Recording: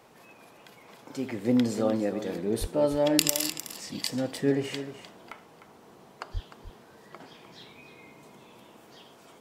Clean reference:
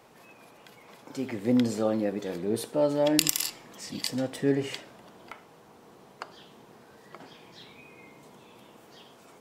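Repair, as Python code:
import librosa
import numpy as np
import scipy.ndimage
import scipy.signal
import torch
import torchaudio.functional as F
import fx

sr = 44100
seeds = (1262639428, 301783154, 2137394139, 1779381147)

y = fx.fix_deplosive(x, sr, at_s=(2.6, 6.33))
y = fx.fix_echo_inverse(y, sr, delay_ms=303, level_db=-12.0)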